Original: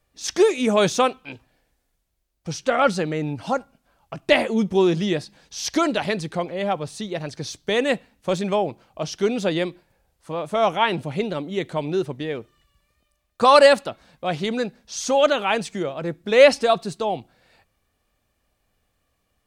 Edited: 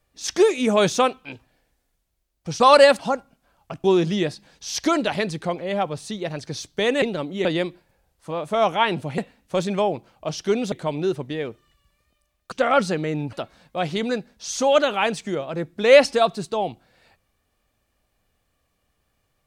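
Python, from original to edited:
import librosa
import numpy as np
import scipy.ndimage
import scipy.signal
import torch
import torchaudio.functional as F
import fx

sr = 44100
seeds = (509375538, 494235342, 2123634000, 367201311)

y = fx.edit(x, sr, fx.swap(start_s=2.6, length_s=0.81, other_s=13.42, other_length_s=0.39),
    fx.cut(start_s=4.26, length_s=0.48),
    fx.swap(start_s=7.92, length_s=1.54, other_s=11.19, other_length_s=0.43), tone=tone)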